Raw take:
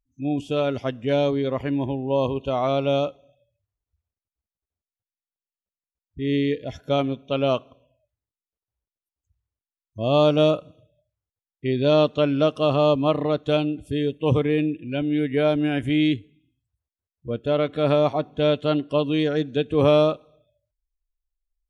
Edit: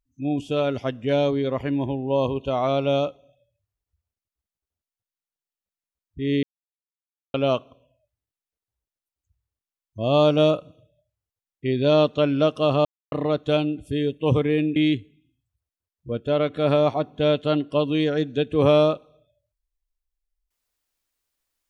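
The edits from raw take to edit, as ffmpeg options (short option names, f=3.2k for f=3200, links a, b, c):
-filter_complex "[0:a]asplit=6[a][b][c][d][e][f];[a]atrim=end=6.43,asetpts=PTS-STARTPTS,afade=t=out:st=6.426:d=0.004:c=hsin[g];[b]atrim=start=6.43:end=7.34,asetpts=PTS-STARTPTS,volume=0[h];[c]atrim=start=7.34:end=12.85,asetpts=PTS-STARTPTS,afade=t=in:d=0.004:c=hsin,afade=t=out:st=5.506:d=0.004:c=hsin[i];[d]atrim=start=12.85:end=13.12,asetpts=PTS-STARTPTS,volume=0[j];[e]atrim=start=13.12:end=14.762,asetpts=PTS-STARTPTS,afade=t=in:d=0.004:c=hsin[k];[f]atrim=start=15.948[l];[g][h][i][j][k]concat=n=5:v=0:a=1[m];[m][l]acrossfade=d=0.004:c1=hsin:c2=hsin"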